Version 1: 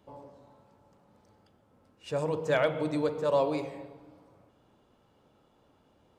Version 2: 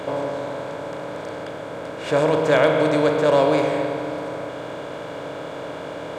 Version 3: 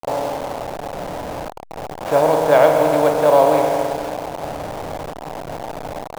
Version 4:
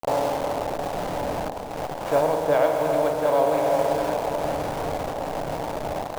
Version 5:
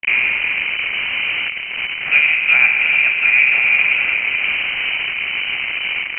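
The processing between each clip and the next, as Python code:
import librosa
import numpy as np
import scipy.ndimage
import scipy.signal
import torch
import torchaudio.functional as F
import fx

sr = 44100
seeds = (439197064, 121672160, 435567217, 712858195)

y1 = fx.bin_compress(x, sr, power=0.4)
y1 = y1 * 10.0 ** (6.0 / 20.0)
y2 = fx.delta_hold(y1, sr, step_db=-24.0)
y2 = fx.peak_eq(y2, sr, hz=770.0, db=13.0, octaves=0.84)
y2 = y2 * 10.0 ** (-2.0 / 20.0)
y3 = fx.rider(y2, sr, range_db=4, speed_s=0.5)
y3 = fx.echo_alternate(y3, sr, ms=364, hz=850.0, feedback_pct=76, wet_db=-7.0)
y3 = y3 * 10.0 ** (-5.0 / 20.0)
y4 = fx.freq_invert(y3, sr, carrier_hz=3000)
y4 = y4 * 10.0 ** (7.0 / 20.0)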